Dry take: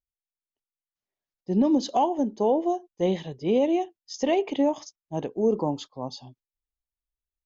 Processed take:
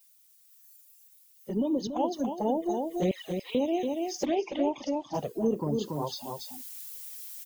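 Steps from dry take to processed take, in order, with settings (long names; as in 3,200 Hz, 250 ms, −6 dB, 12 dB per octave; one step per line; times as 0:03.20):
spectral magnitudes quantised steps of 30 dB
background noise violet −48 dBFS
flanger swept by the level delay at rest 5.4 ms, full sweep at −18.5 dBFS
0:03.11–0:03.55: high-pass filter 1,000 Hz 24 dB per octave
on a send: single-tap delay 283 ms −7.5 dB
on the sum: speech leveller within 4 dB 0.5 s
0:04.25–0:05.14: low-pass filter 5,900 Hz 24 dB per octave
downward compressor 1.5 to 1, threshold −45 dBFS, peak gain reduction 9.5 dB
noise reduction from a noise print of the clip's start 11 dB
0:01.87–0:02.38: multiband upward and downward expander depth 100%
level +6 dB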